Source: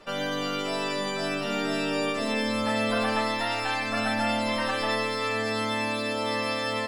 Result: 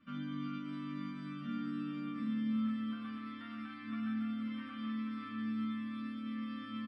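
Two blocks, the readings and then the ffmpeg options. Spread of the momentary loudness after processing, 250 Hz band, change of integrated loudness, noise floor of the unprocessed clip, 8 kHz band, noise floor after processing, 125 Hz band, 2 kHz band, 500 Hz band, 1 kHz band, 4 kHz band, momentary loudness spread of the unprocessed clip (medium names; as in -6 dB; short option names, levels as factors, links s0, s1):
8 LU, -5.0 dB, -12.5 dB, -30 dBFS, under -35 dB, -47 dBFS, -8.5 dB, -22.0 dB, under -30 dB, -20.5 dB, -23.0 dB, 3 LU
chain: -filter_complex "[0:a]alimiter=limit=0.0891:level=0:latency=1:release=281,firequalizer=gain_entry='entry(190,0);entry(360,-29);entry(1100,4);entry(2000,-22)':delay=0.05:min_phase=1,asplit=2[s0][s1];[s1]aecho=0:1:13|40:0.596|0.158[s2];[s0][s2]amix=inputs=2:normalize=0,aeval=exprs='0.0631*(cos(1*acos(clip(val(0)/0.0631,-1,1)))-cos(1*PI/2))+0.00126*(cos(4*acos(clip(val(0)/0.0631,-1,1)))-cos(4*PI/2))':c=same,asplit=3[s3][s4][s5];[s3]bandpass=f=270:t=q:w=8,volume=1[s6];[s4]bandpass=f=2290:t=q:w=8,volume=0.501[s7];[s5]bandpass=f=3010:t=q:w=8,volume=0.355[s8];[s6][s7][s8]amix=inputs=3:normalize=0,asplit=2[s9][s10];[s10]aecho=0:1:479:0.355[s11];[s9][s11]amix=inputs=2:normalize=0,volume=4.22"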